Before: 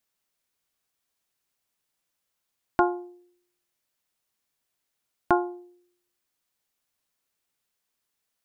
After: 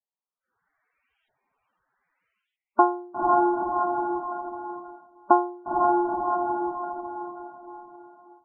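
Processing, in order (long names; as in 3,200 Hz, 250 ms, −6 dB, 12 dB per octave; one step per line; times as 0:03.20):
auto-filter low-pass saw up 0.78 Hz 790–3,100 Hz
feedback delay with all-pass diffusion 480 ms, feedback 41%, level −4.5 dB
automatic gain control gain up to 14.5 dB
noise reduction from a noise print of the clip's start 14 dB
spectral peaks only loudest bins 32
level −3 dB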